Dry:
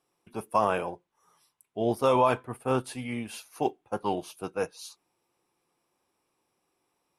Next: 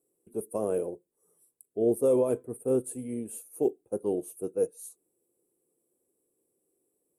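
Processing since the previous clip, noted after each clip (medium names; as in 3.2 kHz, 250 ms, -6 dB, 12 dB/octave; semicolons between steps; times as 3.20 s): FFT filter 140 Hz 0 dB, 460 Hz +11 dB, 880 Hz -14 dB, 5.1 kHz -17 dB, 8 kHz +11 dB; trim -5.5 dB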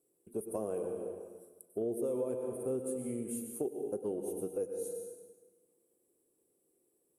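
plate-style reverb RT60 1.3 s, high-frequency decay 0.85×, pre-delay 85 ms, DRR 6 dB; compression 4:1, threshold -34 dBFS, peak gain reduction 14 dB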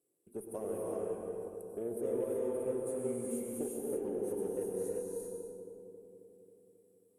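filtered feedback delay 270 ms, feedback 68%, low-pass 1.3 kHz, level -7.5 dB; Chebyshev shaper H 7 -45 dB, 8 -35 dB, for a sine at -22.5 dBFS; gated-style reverb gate 410 ms rising, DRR -1.5 dB; trim -4.5 dB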